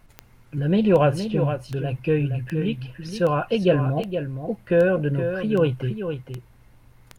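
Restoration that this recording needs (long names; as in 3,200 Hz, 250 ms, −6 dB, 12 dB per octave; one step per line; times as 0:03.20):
click removal
downward expander −44 dBFS, range −21 dB
echo removal 468 ms −8.5 dB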